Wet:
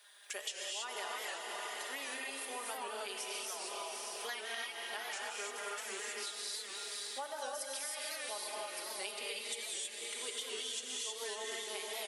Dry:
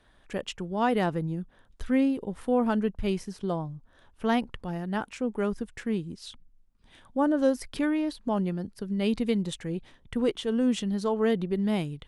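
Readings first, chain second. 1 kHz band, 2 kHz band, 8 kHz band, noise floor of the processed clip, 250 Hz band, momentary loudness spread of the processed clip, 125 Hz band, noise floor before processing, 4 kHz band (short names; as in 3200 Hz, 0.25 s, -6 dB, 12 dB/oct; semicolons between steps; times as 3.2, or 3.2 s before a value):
-9.5 dB, -2.5 dB, +9.0 dB, -47 dBFS, -33.0 dB, 2 LU, under -40 dB, -61 dBFS, +2.0 dB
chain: HPF 380 Hz 24 dB/oct; differentiator; comb 4.9 ms, depth 73%; diffused feedback echo 0.501 s, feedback 48%, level -7 dB; non-linear reverb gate 0.34 s rising, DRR -4 dB; compressor 6:1, threshold -52 dBFS, peak gain reduction 17.5 dB; record warp 78 rpm, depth 100 cents; gain +12.5 dB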